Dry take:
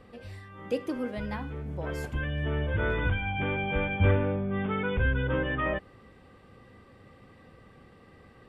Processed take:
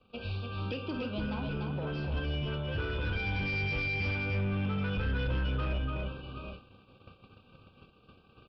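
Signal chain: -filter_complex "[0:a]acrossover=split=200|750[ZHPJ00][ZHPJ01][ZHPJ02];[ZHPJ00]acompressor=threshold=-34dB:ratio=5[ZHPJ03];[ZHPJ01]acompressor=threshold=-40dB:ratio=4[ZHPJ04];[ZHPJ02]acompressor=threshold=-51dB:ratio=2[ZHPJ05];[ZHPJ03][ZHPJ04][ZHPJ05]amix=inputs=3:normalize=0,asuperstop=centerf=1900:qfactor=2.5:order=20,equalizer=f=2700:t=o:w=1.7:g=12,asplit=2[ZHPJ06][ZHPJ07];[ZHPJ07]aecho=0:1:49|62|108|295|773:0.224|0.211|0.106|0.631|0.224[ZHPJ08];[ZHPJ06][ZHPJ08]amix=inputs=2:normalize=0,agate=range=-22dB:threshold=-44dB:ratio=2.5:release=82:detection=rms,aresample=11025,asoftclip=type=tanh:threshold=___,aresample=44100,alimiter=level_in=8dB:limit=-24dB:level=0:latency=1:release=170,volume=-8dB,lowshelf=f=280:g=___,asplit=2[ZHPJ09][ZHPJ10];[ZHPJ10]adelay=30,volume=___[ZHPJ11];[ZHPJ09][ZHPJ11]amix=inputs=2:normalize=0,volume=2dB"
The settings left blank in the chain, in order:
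-28.5dB, 4, -12dB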